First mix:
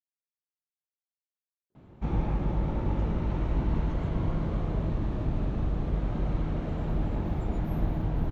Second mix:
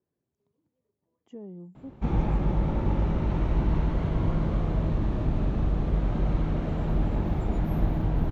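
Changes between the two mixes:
speech: entry -1.70 s; reverb: on, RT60 0.35 s

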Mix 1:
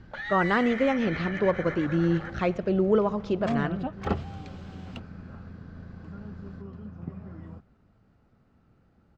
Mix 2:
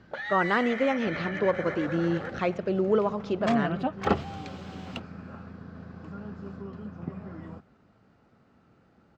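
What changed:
first sound: remove HPF 820 Hz; second sound +6.0 dB; master: add HPF 240 Hz 6 dB/oct

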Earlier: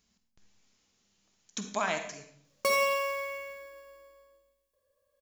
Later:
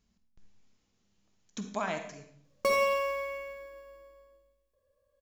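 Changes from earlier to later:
speech -3.0 dB; master: add tilt -2 dB/oct

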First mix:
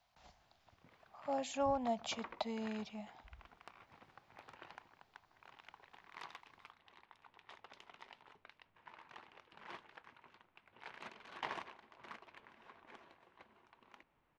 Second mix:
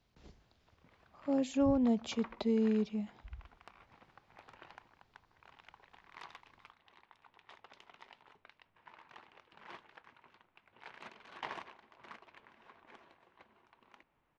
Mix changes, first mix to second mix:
speech: add resonant low shelf 530 Hz +10 dB, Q 3; master: add high shelf 12000 Hz -7 dB

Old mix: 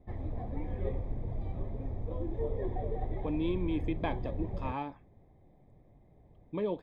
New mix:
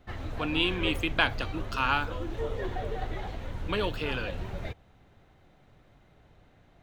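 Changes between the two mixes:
speech: entry -2.85 s; master: remove running mean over 31 samples

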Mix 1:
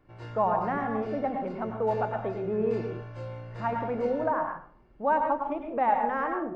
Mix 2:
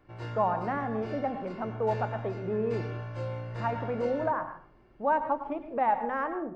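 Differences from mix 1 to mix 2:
speech: send -7.0 dB; background +3.5 dB

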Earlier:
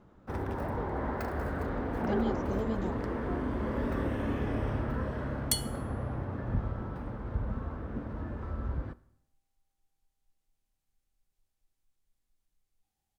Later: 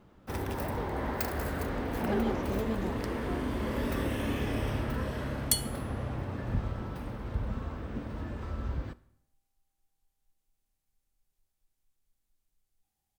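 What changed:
first sound: add EQ curve 1500 Hz 0 dB, 2600 Hz +9 dB, 11000 Hz +13 dB; master: add high shelf 10000 Hz +6.5 dB

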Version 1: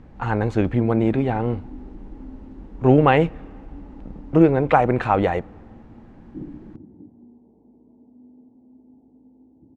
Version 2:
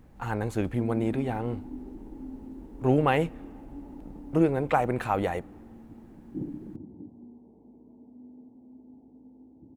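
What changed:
speech -8.5 dB; master: remove air absorption 140 m

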